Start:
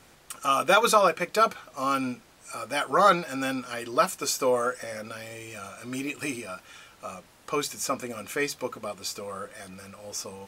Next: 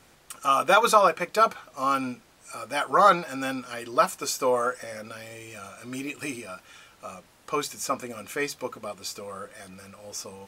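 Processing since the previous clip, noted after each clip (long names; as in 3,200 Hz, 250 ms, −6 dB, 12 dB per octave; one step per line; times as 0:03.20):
dynamic equaliser 950 Hz, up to +5 dB, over −34 dBFS, Q 1.2
level −1.5 dB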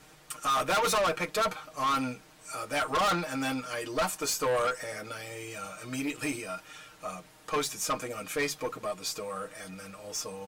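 comb filter 6.5 ms, depth 80%
tube saturation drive 24 dB, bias 0.2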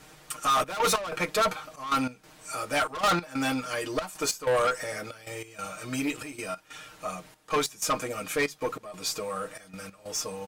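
gate pattern "xxxx.x.xxxx.x." 94 BPM −12 dB
level +3.5 dB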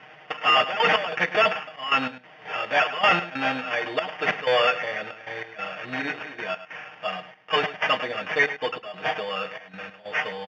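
decimation without filtering 11×
loudspeaker in its box 170–4,100 Hz, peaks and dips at 300 Hz −9 dB, 730 Hz +7 dB, 1,900 Hz +9 dB, 2,900 Hz +8 dB
single-tap delay 104 ms −13.5 dB
level +2 dB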